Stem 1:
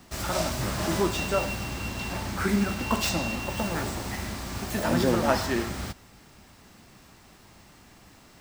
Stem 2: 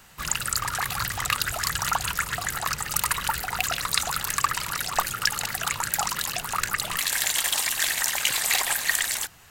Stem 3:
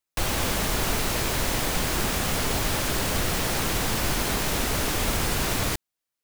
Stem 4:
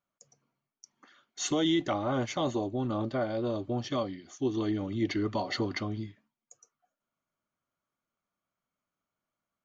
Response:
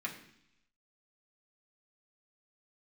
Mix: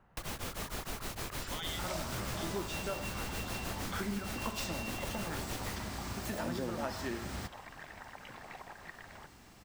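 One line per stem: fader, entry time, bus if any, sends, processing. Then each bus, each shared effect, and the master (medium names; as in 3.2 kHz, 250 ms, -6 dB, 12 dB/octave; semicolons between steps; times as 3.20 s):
-4.5 dB, 1.55 s, no send, none
-8.0 dB, 0.00 s, no send, low-pass 1 kHz 12 dB/octave; compression, threshold -37 dBFS, peak gain reduction 15 dB
-10.0 dB, 0.00 s, no send, tremolo of two beating tones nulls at 6.5 Hz
-1.0 dB, 0.00 s, no send, spectral gate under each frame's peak -15 dB weak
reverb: none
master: compression 3:1, threshold -36 dBFS, peak gain reduction 11 dB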